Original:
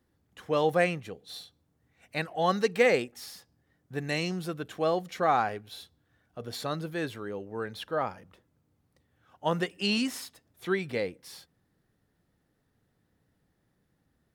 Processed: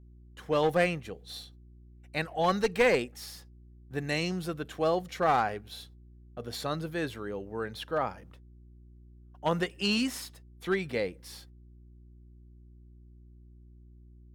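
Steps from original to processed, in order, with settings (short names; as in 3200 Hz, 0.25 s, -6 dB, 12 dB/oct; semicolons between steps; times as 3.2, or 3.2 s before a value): one-sided clip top -22.5 dBFS; gate -57 dBFS, range -33 dB; buzz 60 Hz, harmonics 6, -53 dBFS -8 dB/oct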